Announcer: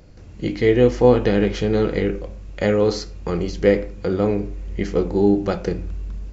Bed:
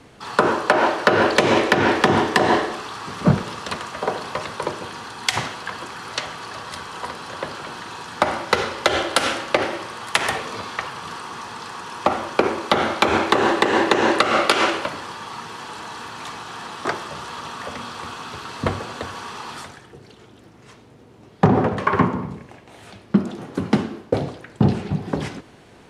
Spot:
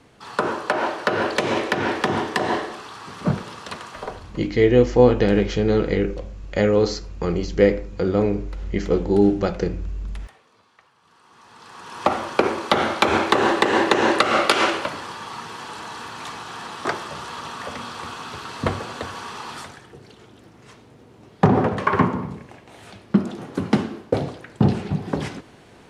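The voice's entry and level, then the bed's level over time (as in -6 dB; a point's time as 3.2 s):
3.95 s, 0.0 dB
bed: 4 s -5.5 dB
4.56 s -28 dB
10.97 s -28 dB
12.04 s -0.5 dB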